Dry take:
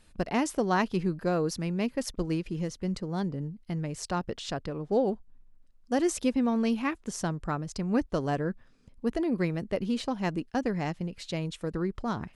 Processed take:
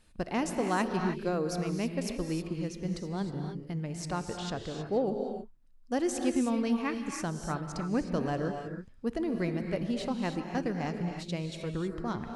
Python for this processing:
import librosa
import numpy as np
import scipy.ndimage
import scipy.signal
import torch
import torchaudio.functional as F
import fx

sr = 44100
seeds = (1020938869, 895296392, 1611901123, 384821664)

y = fx.rev_gated(x, sr, seeds[0], gate_ms=340, shape='rising', drr_db=4.5)
y = y * 10.0 ** (-3.5 / 20.0)